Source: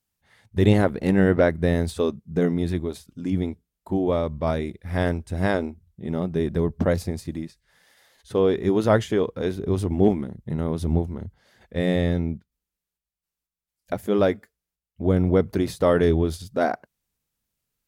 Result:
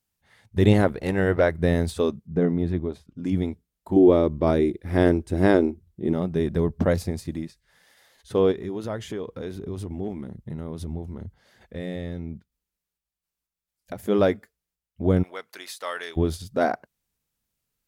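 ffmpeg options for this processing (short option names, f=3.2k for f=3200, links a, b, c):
-filter_complex "[0:a]asettb=1/sr,asplit=3[a][b][c];[a]atrim=end=0.924[d];[b]atrim=start=0.92:end=1.59,asetpts=PTS-STARTPTS,afade=t=in:d=0.004:c=qsin,afade=t=out:st=0.666:d=0.004:c=qsin,equalizer=f=220:w=1.5:g=-9.5[e];[c]atrim=start=1.586[f];[d][e]acrossfade=d=0.004:c1=hsin:c2=qsin[g];[g][f]acrossfade=d=0.004:c1=qsin:c2=hsin,asettb=1/sr,asplit=3[h][i][j];[h]atrim=end=2.274[k];[i]atrim=start=2.27:end=3.24,asetpts=PTS-STARTPTS,afade=t=in:d=0.004:c=qsin,afade=t=out:st=0.966:d=0.004:c=qsin,lowpass=f=1.3k:p=1[l];[j]atrim=start=3.236[m];[k][l]acrossfade=d=0.004:c1=hsin:c2=qsin[n];[n][m]acrossfade=d=0.004:c1=qsin:c2=hsin,asettb=1/sr,asplit=3[o][p][q];[o]atrim=end=3.964[r];[p]atrim=start=3.96:end=6.13,asetpts=PTS-STARTPTS,afade=t=in:d=0.004:c=qsin,afade=t=out:st=2.166:d=0.004:c=qsin,equalizer=f=340:t=o:w=0.77:g=12.5[s];[q]atrim=start=6.126[t];[r][s]acrossfade=d=0.004:c1=hsin:c2=qsin[u];[u][t]acrossfade=d=0.004:c1=qsin:c2=hsin,asplit=3[v][w][x];[v]afade=t=out:st=8.51:d=0.02[y];[w]acompressor=threshold=-32dB:ratio=2.5:attack=3.2:release=140:knee=1:detection=peak,afade=t=in:st=8.51:d=0.02,afade=t=out:st=13.98:d=0.02[z];[x]afade=t=in:st=13.98:d=0.02[aa];[y][z][aa]amix=inputs=3:normalize=0,asplit=3[ab][ac][ad];[ab]afade=t=out:st=15.22:d=0.02[ae];[ac]highpass=1.4k,afade=t=in:st=15.22:d=0.02,afade=t=out:st=16.16:d=0.02[af];[ad]afade=t=in:st=16.16:d=0.02[ag];[ae][af][ag]amix=inputs=3:normalize=0"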